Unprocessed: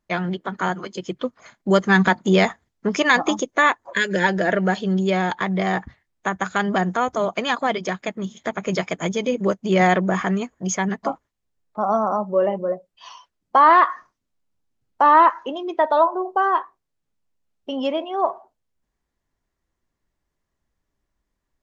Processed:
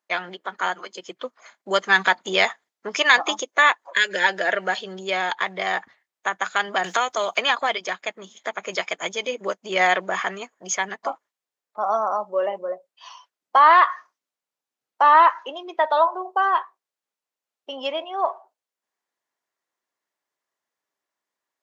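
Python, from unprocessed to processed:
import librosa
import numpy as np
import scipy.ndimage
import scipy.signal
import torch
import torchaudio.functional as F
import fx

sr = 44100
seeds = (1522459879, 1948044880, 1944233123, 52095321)

y = fx.band_squash(x, sr, depth_pct=100, at=(6.84, 7.69))
y = scipy.signal.sosfilt(scipy.signal.butter(2, 570.0, 'highpass', fs=sr, output='sos'), y)
y = fx.dynamic_eq(y, sr, hz=3100.0, q=0.88, threshold_db=-36.0, ratio=4.0, max_db=6)
y = y * librosa.db_to_amplitude(-1.0)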